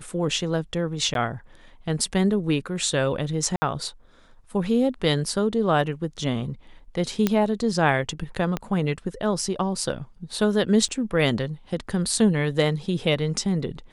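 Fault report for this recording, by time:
1.14–1.15 gap 12 ms
3.56–3.62 gap 60 ms
7.27 pop -7 dBFS
8.57 pop -13 dBFS
10.88–10.89 gap 7.8 ms

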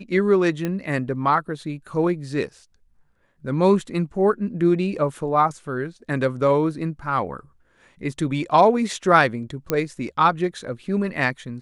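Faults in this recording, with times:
0.65 pop -13 dBFS
9.7 pop -7 dBFS

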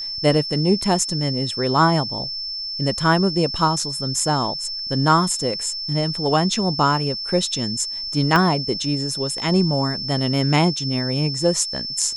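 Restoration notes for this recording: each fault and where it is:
tone 5300 Hz -26 dBFS
8.36 pop -6 dBFS

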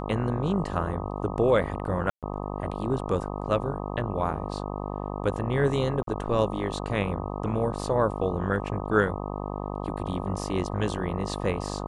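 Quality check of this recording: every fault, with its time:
buzz 50 Hz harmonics 25 -33 dBFS
2.1–2.23 gap 0.127 s
6.03–6.07 gap 43 ms

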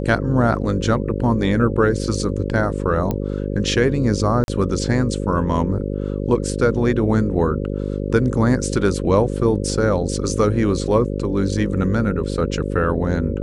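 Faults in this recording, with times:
buzz 50 Hz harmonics 11 -24 dBFS
3.11 pop -10 dBFS
4.44–4.48 gap 41 ms

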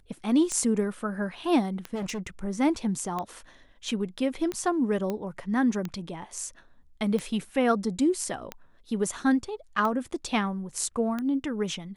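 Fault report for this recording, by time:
tick 45 rpm -18 dBFS
1.94–2.27 clipped -29 dBFS
5.1 pop -18 dBFS

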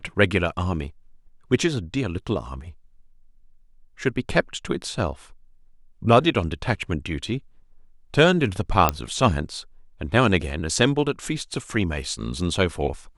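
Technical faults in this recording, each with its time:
8.89 pop -3 dBFS

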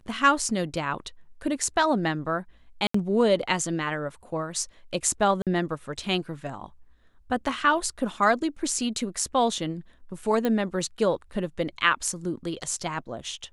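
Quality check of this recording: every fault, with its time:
2.87–2.94 gap 74 ms
5.42–5.47 gap 47 ms
10.45 pop -14 dBFS

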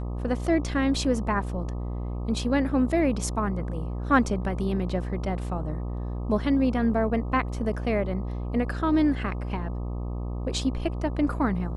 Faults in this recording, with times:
buzz 60 Hz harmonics 21 -31 dBFS

